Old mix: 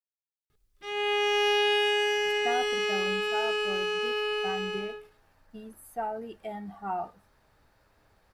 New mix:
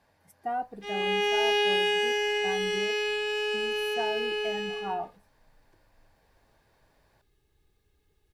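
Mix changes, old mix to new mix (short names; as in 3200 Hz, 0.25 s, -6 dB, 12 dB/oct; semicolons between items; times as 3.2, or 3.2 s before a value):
speech: entry -2.00 s; master: add notch 1300 Hz, Q 5.3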